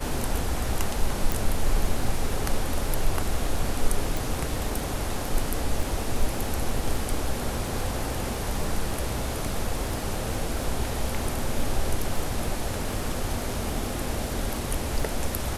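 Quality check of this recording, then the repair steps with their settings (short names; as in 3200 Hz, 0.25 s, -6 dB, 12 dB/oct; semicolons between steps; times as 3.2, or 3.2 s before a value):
crackle 31/s -31 dBFS
1.32 pop
4.17 pop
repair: de-click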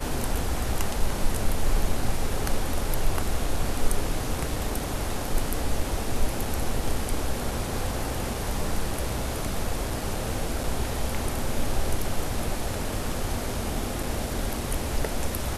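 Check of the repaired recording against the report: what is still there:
none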